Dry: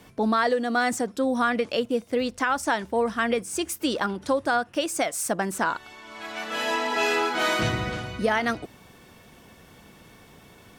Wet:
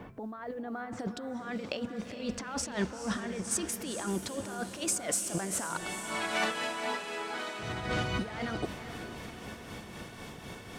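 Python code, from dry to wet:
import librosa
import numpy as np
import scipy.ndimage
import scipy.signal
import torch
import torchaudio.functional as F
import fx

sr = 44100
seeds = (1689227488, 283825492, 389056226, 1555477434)

y = fx.lowpass(x, sr, hz=fx.steps((0.0, 1600.0), (0.99, 6200.0), (3.51, 11000.0)), slope=12)
y = fx.over_compress(y, sr, threshold_db=-34.0, ratio=-1.0)
y = fx.quant_dither(y, sr, seeds[0], bits=12, dither='none')
y = y * (1.0 - 0.53 / 2.0 + 0.53 / 2.0 * np.cos(2.0 * np.pi * 3.9 * (np.arange(len(y)) / sr)))
y = fx.echo_diffused(y, sr, ms=457, feedback_pct=55, wet_db=-9.0)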